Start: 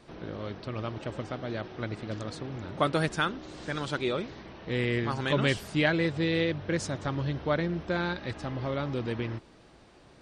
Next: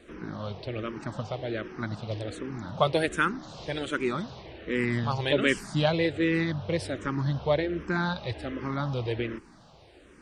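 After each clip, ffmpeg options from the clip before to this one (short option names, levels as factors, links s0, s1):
-filter_complex "[0:a]asplit=2[s0][s1];[s1]afreqshift=-1.3[s2];[s0][s2]amix=inputs=2:normalize=1,volume=1.68"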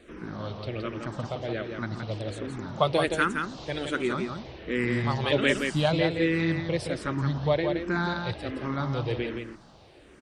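-af "aecho=1:1:170:0.531"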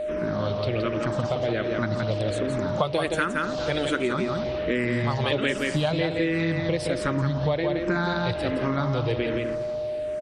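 -filter_complex "[0:a]asplit=2[s0][s1];[s1]adelay=239,lowpass=f=2100:p=1,volume=0.141,asplit=2[s2][s3];[s3]adelay=239,lowpass=f=2100:p=1,volume=0.51,asplit=2[s4][s5];[s5]adelay=239,lowpass=f=2100:p=1,volume=0.51,asplit=2[s6][s7];[s7]adelay=239,lowpass=f=2100:p=1,volume=0.51[s8];[s0][s2][s4][s6][s8]amix=inputs=5:normalize=0,aeval=exprs='val(0)+0.0178*sin(2*PI*610*n/s)':c=same,acompressor=threshold=0.0316:ratio=6,volume=2.66"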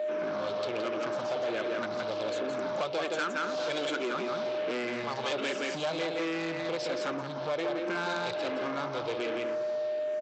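-af "aresample=16000,asoftclip=type=tanh:threshold=0.0501,aresample=44100,highpass=340,bandreject=f=1900:w=13"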